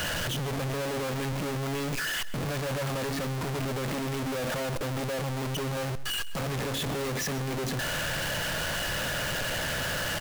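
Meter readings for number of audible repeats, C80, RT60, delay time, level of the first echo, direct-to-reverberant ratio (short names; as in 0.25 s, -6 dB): 1, none, none, 0.132 s, -16.5 dB, none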